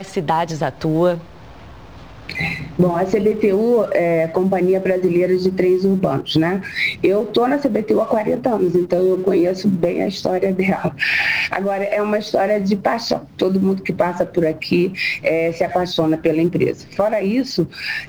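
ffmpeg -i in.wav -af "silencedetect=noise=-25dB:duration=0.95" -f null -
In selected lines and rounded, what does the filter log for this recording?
silence_start: 1.19
silence_end: 2.29 | silence_duration: 1.11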